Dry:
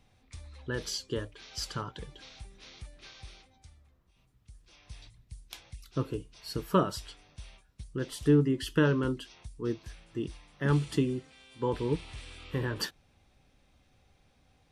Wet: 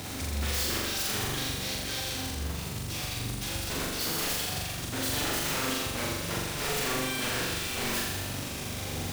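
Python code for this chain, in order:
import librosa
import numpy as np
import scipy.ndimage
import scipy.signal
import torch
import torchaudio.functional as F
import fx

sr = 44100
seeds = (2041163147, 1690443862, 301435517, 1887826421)

p1 = x + 0.5 * 10.0 ** (-36.0 / 20.0) * np.sign(x)
p2 = scipy.signal.sosfilt(scipy.signal.butter(4, 77.0, 'highpass', fs=sr, output='sos'), p1)
p3 = fx.peak_eq(p2, sr, hz=2300.0, db=-3.0, octaves=1.4)
p4 = fx.over_compress(p3, sr, threshold_db=-35.0, ratio=-1.0)
p5 = p3 + (p4 * librosa.db_to_amplitude(-3.0))
p6 = (np.mod(10.0 ** (27.0 / 20.0) * p5 + 1.0, 2.0) - 1.0) / 10.0 ** (27.0 / 20.0)
p7 = fx.dynamic_eq(p6, sr, hz=870.0, q=0.99, threshold_db=-50.0, ratio=4.0, max_db=-4)
p8 = fx.stretch_vocoder(p7, sr, factor=0.62)
y = p8 + fx.room_flutter(p8, sr, wall_m=7.2, rt60_s=1.3, dry=0)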